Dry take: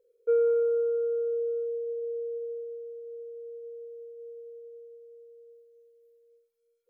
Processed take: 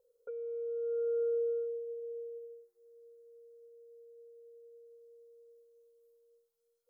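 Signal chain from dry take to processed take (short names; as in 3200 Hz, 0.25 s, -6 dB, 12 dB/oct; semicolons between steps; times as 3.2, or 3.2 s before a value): envelope phaser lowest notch 350 Hz, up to 1300 Hz, full sweep at -23 dBFS; negative-ratio compressor -33 dBFS, ratio -1; 3.68–4.87 notch comb 1100 Hz; gain -1.5 dB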